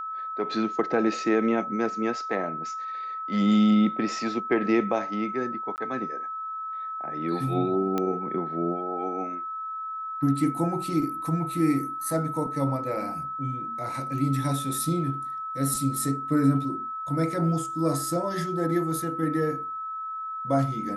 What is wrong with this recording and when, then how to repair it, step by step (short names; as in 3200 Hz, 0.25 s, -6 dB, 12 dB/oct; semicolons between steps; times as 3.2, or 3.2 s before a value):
tone 1300 Hz -31 dBFS
5.76–5.78 gap 19 ms
7.98 pop -14 dBFS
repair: de-click; notch 1300 Hz, Q 30; interpolate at 5.76, 19 ms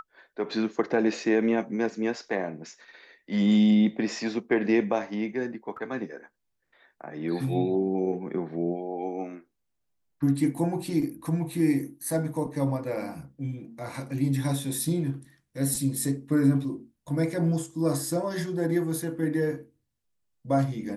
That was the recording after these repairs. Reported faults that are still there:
none